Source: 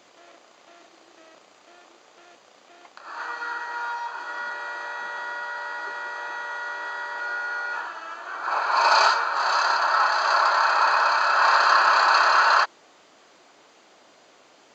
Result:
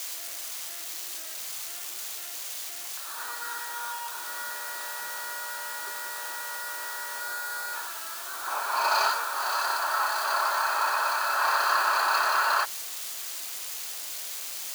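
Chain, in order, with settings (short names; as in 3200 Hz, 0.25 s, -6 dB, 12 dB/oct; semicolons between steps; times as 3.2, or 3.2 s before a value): switching spikes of -20 dBFS; gain -6.5 dB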